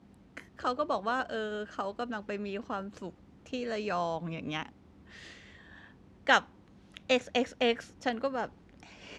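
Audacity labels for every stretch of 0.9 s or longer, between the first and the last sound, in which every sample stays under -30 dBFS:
4.630000	6.270000	silence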